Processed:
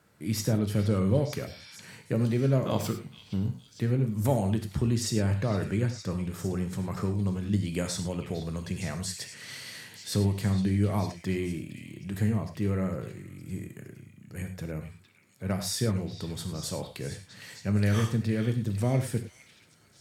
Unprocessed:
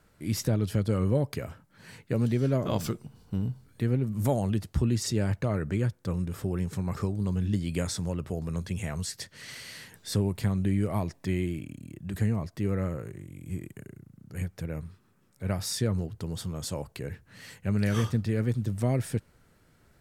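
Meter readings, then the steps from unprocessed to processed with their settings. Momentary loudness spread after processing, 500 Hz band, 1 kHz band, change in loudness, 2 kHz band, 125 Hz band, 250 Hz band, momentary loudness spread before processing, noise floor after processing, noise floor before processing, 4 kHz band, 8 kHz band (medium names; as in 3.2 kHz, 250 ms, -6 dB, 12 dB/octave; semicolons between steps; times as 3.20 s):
14 LU, +0.5 dB, +1.0 dB, +0.5 dB, +1.0 dB, 0.0 dB, +0.5 dB, 13 LU, -58 dBFS, -64 dBFS, +1.5 dB, +1.5 dB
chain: high-pass 97 Hz; repeats whose band climbs or falls 460 ms, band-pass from 3 kHz, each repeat 0.7 oct, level -7.5 dB; gated-style reverb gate 130 ms flat, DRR 6.5 dB; spectral replace 1.49–1.74 s, 780–5700 Hz after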